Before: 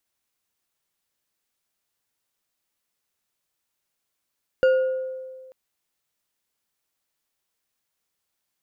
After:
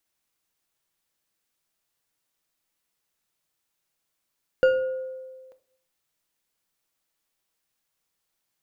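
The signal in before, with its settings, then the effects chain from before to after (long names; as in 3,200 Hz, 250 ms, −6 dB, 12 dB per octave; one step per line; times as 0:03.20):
struck glass bar, lowest mode 520 Hz, decay 1.72 s, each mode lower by 11 dB, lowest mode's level −13 dB
rectangular room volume 530 cubic metres, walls furnished, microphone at 0.65 metres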